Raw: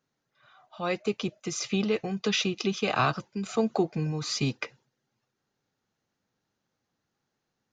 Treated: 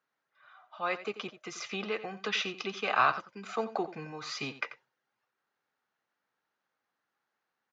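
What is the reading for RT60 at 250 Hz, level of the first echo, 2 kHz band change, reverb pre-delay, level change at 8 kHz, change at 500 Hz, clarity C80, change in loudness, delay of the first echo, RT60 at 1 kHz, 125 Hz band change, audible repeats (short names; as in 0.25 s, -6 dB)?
none, -14.0 dB, +0.5 dB, none, -10.5 dB, -6.5 dB, none, -4.5 dB, 88 ms, none, -16.5 dB, 1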